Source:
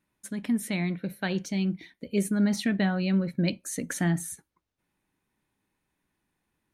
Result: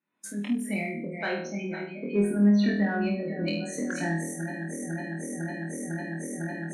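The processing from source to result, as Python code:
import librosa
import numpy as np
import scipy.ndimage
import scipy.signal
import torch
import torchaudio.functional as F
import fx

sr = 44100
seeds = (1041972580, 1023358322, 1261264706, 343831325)

p1 = fx.reverse_delay_fb(x, sr, ms=251, feedback_pct=74, wet_db=-9)
p2 = fx.recorder_agc(p1, sr, target_db=-23.5, rise_db_per_s=56.0, max_gain_db=30)
p3 = fx.high_shelf(p2, sr, hz=5300.0, db=-4.5)
p4 = fx.spec_gate(p3, sr, threshold_db=-25, keep='strong')
p5 = fx.high_shelf(p4, sr, hz=12000.0, db=-11.0)
p6 = p5 + fx.room_flutter(p5, sr, wall_m=4.2, rt60_s=0.62, dry=0)
p7 = fx.noise_reduce_blind(p6, sr, reduce_db=9)
p8 = scipy.signal.sosfilt(scipy.signal.butter(4, 200.0, 'highpass', fs=sr, output='sos'), p7)
p9 = 10.0 ** (-24.5 / 20.0) * np.tanh(p8 / 10.0 ** (-24.5 / 20.0))
p10 = p8 + (p9 * 10.0 ** (-9.0 / 20.0))
y = p10 * 10.0 ** (-3.0 / 20.0)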